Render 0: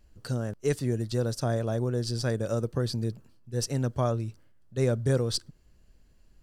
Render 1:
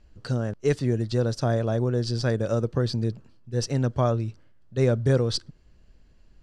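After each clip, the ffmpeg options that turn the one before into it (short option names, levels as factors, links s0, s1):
-af "lowpass=5400,volume=1.58"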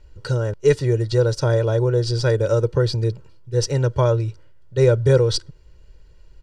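-af "aecho=1:1:2.1:0.83,volume=1.5"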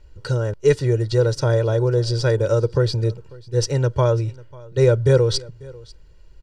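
-af "aecho=1:1:544:0.0708"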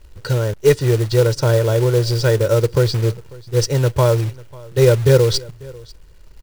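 -af "acrusher=bits=4:mode=log:mix=0:aa=0.000001,volume=1.41"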